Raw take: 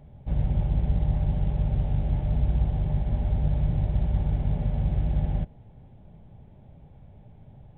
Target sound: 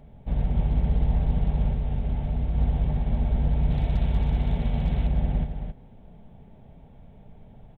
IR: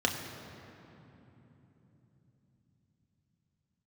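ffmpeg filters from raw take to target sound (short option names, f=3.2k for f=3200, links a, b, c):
-filter_complex "[0:a]equalizer=f=100:t=o:w=2:g=-4,asoftclip=type=hard:threshold=-19dB,aecho=1:1:4.4:0.31,aecho=1:1:271:0.447,asettb=1/sr,asplit=3[a][b][c];[a]atrim=end=1.714[d];[b]atrim=start=1.71:end=2.58,asetpts=PTS-STARTPTS,afade=t=in:d=0.004:c=qsin,afade=t=out:st=0.866:d=0.004:c=qsin,acompressor=threshold=-24dB:ratio=6[e];[c]atrim=start=2.576[f];[d][e]acrossfade=d=0.004:c1=hsin:c2=qsin[g];[g][f]acrossfade=d=0.004:c1=qsin:c2=hsin,asettb=1/sr,asplit=3[h][i][j];[h]atrim=end=3.704[k];[i]atrim=start=3.7:end=5.07,asetpts=PTS-STARTPTS,afade=t=in:d=0.004:c=qsin,afade=t=out:st=1.366:d=0.004:c=qsin,highshelf=f=2.4k:g=10.5[l];[j]atrim=start=5.066[m];[k][l]acrossfade=d=0.004:c1=hsin:c2=qsin[n];[n][m]acrossfade=d=0.004:c1=qsin:c2=hsin,volume=2.5dB"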